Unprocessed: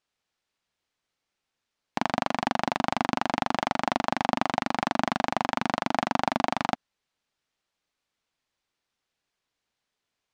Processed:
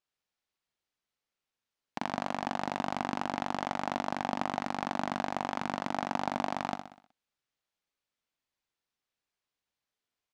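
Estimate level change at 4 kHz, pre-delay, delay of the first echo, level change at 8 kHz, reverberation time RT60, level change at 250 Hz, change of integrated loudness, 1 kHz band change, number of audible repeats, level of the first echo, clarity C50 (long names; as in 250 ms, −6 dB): −8.5 dB, no reverb audible, 62 ms, −6.5 dB, no reverb audible, −6.0 dB, −6.5 dB, −6.5 dB, 5, −8.5 dB, no reverb audible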